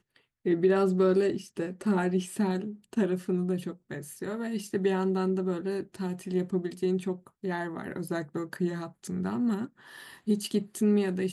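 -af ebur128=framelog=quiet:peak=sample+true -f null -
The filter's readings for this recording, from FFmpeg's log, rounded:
Integrated loudness:
  I:         -29.8 LUFS
  Threshold: -40.0 LUFS
Loudness range:
  LRA:         5.1 LU
  Threshold: -50.9 LUFS
  LRA low:   -32.9 LUFS
  LRA high:  -27.8 LUFS
Sample peak:
  Peak:      -13.6 dBFS
True peak:
  Peak:      -13.6 dBFS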